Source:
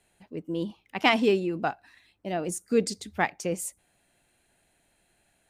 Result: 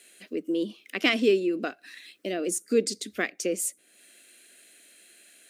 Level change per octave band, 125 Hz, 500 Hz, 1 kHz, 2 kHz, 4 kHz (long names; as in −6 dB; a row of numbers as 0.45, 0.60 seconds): −8.0, +1.5, −10.0, 0.0, +1.5 decibels